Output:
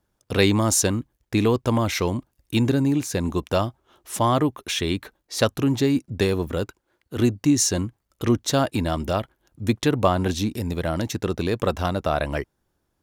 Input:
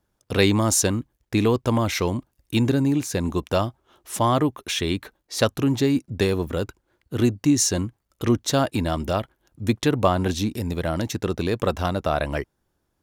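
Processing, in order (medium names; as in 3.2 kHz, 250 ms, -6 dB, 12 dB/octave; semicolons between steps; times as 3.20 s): 6.64–7.17 s: bass shelf 180 Hz -9.5 dB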